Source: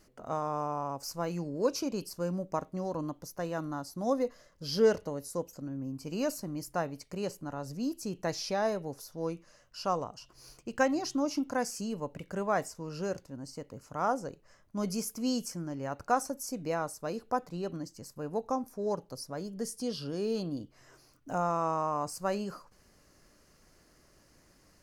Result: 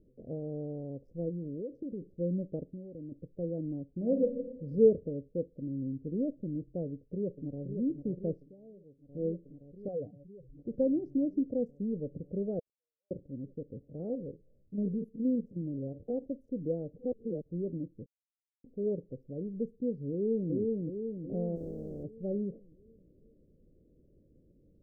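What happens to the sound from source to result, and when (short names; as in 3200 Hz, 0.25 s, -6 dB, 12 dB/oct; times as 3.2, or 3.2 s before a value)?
1.29–2.1 compressor, threshold -36 dBFS
2.67–3.12 compressor, threshold -41 dBFS
3.9–4.7 reverb throw, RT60 1.1 s, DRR 5 dB
6.85–7.63 echo throw 0.52 s, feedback 80%, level -8 dB
8.35–9.15 dip -19 dB, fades 0.15 s
9.88–10.57 spectral contrast raised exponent 2.7
12.59–13.11 inverse Chebyshev high-pass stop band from 400 Hz, stop band 70 dB
13.84–16.24 stepped spectrum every 50 ms
16.93–17.51 reverse
18.06–18.64 mute
20.12–20.52 echo throw 0.37 s, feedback 55%, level -1.5 dB
21.55–22.03 spectral contrast lowered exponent 0.16
whole clip: Wiener smoothing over 25 samples; elliptic low-pass 510 Hz, stop band 50 dB; gain +2.5 dB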